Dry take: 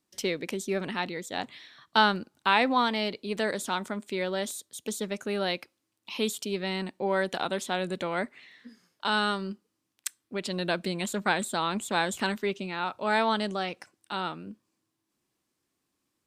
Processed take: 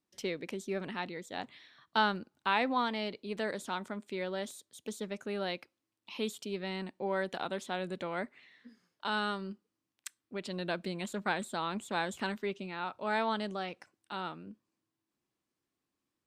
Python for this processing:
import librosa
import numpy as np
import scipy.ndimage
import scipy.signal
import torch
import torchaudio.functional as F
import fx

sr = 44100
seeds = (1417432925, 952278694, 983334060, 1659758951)

y = fx.high_shelf(x, sr, hz=5300.0, db=-7.5)
y = y * librosa.db_to_amplitude(-6.0)